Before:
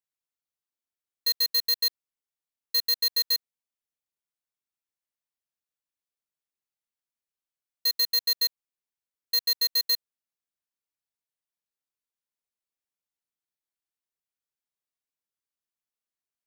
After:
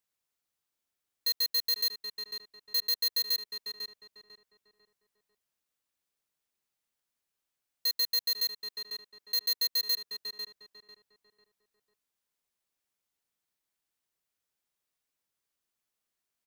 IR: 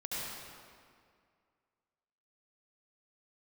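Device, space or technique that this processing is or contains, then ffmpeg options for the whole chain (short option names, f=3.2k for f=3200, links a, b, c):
stacked limiters: -filter_complex "[0:a]asettb=1/sr,asplit=3[a][b][c];[a]atrim=end=8.274[d];[b]atrim=start=8.27:end=9.48,asetpts=PTS-STARTPTS,afade=t=in:d=0.004:c=qsin,afade=t=out:st=1.206:d=0.004:c=qsin,highpass=f=140:p=1[e];[c]atrim=start=9.476[f];[d][e]acrossfade=d=0.004:c1=hsin:c2=qsin[g];[g][f]acrossfade=d=0.004:c1=qsin:c2=hsin,asplit=2[h][i];[i]adelay=497,lowpass=f=1.8k:p=1,volume=-12.5dB,asplit=2[j][k];[k]adelay=497,lowpass=f=1.8k:p=1,volume=0.4,asplit=2[l][m];[m]adelay=497,lowpass=f=1.8k:p=1,volume=0.4,asplit=2[n][o];[o]adelay=497,lowpass=f=1.8k:p=1,volume=0.4[p];[h][j][l][n][p]amix=inputs=5:normalize=0,alimiter=level_in=3.5dB:limit=-24dB:level=0:latency=1:release=11,volume=-3.5dB,alimiter=level_in=9dB:limit=-24dB:level=0:latency=1:release=224,volume=-9dB,volume=6.5dB"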